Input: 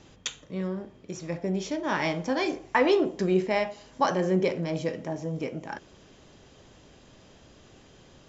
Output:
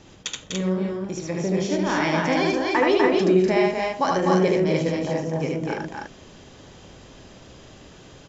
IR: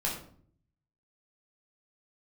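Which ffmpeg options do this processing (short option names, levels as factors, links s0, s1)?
-filter_complex "[0:a]asplit=2[s0][s1];[s1]alimiter=limit=0.0891:level=0:latency=1:release=285,volume=0.891[s2];[s0][s2]amix=inputs=2:normalize=0,aecho=1:1:75.8|247.8|288.6:0.794|0.631|0.708,volume=0.841"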